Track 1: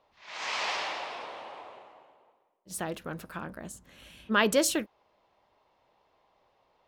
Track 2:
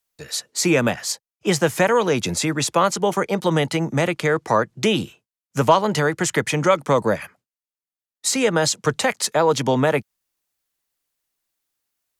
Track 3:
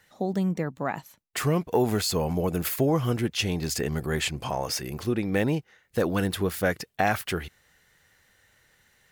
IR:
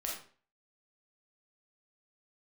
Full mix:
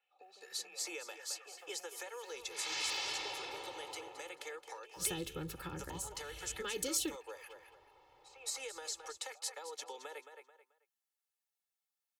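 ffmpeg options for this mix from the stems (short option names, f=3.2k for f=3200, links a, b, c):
-filter_complex "[0:a]acompressor=threshold=-32dB:ratio=4,adelay=2300,volume=0.5dB[a];[1:a]highpass=f=510:w=0.5412,highpass=f=510:w=1.3066,acompressor=threshold=-22dB:ratio=6,volume=-13.5dB,asplit=2[b][c];[c]volume=-3.5dB[d];[2:a]acompressor=threshold=-32dB:ratio=6,highpass=f=230:w=0.5412,highpass=f=230:w=1.3066,equalizer=f=2.7k:t=o:w=1.2:g=11,volume=-13.5dB,asplit=2[e][f];[f]volume=-20dB[g];[b][e]amix=inputs=2:normalize=0,asplit=3[h][i][j];[h]bandpass=f=730:t=q:w=8,volume=0dB[k];[i]bandpass=f=1.09k:t=q:w=8,volume=-6dB[l];[j]bandpass=f=2.44k:t=q:w=8,volume=-9dB[m];[k][l][m]amix=inputs=3:normalize=0,acompressor=threshold=-57dB:ratio=4,volume=0dB[n];[d][g]amix=inputs=2:normalize=0,aecho=0:1:218|436|654|872:1|0.24|0.0576|0.0138[o];[a][n][o]amix=inputs=3:normalize=0,aecho=1:1:2.3:0.98,acrossover=split=310|3000[p][q][r];[q]acompressor=threshold=-50dB:ratio=3[s];[p][s][r]amix=inputs=3:normalize=0"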